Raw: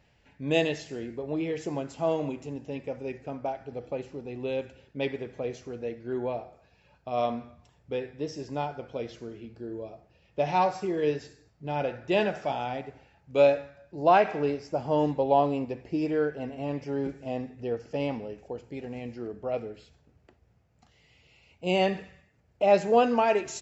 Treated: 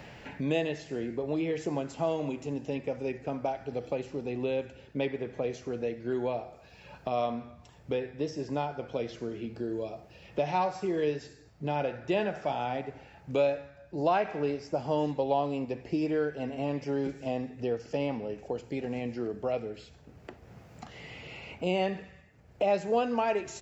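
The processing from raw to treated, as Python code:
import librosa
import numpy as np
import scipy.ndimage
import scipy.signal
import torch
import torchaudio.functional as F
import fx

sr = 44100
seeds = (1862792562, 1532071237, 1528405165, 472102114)

y = fx.band_squash(x, sr, depth_pct=70)
y = F.gain(torch.from_numpy(y), -1.5).numpy()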